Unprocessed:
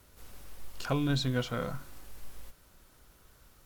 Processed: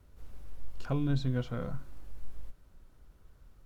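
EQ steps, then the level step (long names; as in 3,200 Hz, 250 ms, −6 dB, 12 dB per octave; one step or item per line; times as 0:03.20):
spectral tilt −2.5 dB per octave
−6.5 dB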